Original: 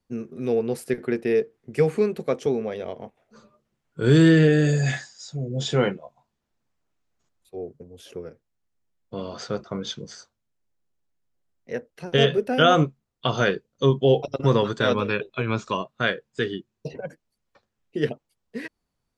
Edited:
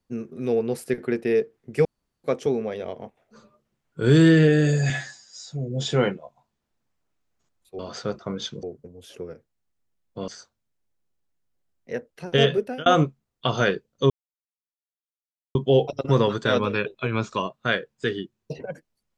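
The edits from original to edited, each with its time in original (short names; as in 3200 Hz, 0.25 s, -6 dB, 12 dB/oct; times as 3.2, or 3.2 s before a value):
1.85–2.24 room tone
4.9–5.3 stretch 1.5×
9.24–10.08 move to 7.59
12.36–12.66 fade out
13.9 insert silence 1.45 s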